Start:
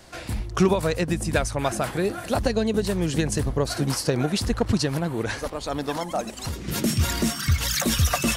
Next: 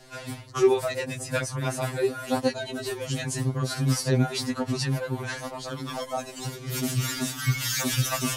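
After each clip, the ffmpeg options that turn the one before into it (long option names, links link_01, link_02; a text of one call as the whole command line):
ffmpeg -i in.wav -af "afftfilt=real='re*2.45*eq(mod(b,6),0)':imag='im*2.45*eq(mod(b,6),0)':win_size=2048:overlap=0.75" out.wav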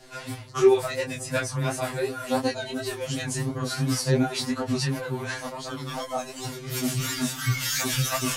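ffmpeg -i in.wav -af "flanger=delay=18:depth=3.1:speed=2.8,volume=4dB" out.wav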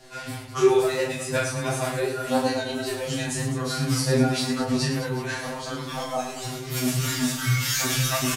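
ffmpeg -i in.wav -af "aecho=1:1:40|104|206.4|370.2|632.4:0.631|0.398|0.251|0.158|0.1" out.wav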